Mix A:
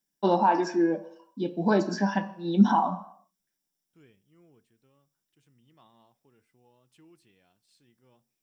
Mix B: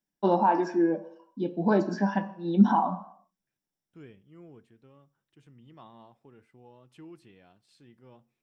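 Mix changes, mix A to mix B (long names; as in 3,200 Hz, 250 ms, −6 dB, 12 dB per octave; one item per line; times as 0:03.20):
second voice +10.0 dB
master: add high-shelf EQ 3,100 Hz −11.5 dB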